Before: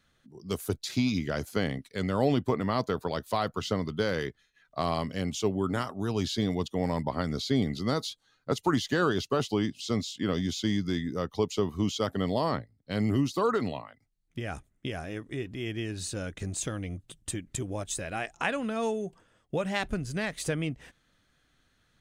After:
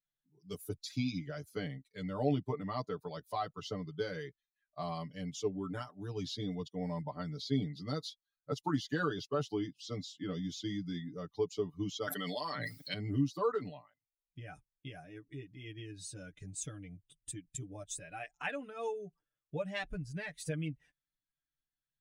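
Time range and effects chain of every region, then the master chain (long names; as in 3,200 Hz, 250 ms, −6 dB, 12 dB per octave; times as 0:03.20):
0:12.07–0:12.94: Chebyshev high-pass filter 190 Hz + tilt shelving filter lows −7 dB, about 920 Hz + envelope flattener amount 100%
whole clip: spectral dynamics exaggerated over time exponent 1.5; comb filter 6.8 ms, depth 94%; level −8 dB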